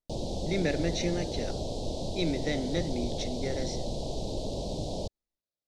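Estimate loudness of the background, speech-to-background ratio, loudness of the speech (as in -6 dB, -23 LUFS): -35.5 LUFS, 2.0 dB, -33.5 LUFS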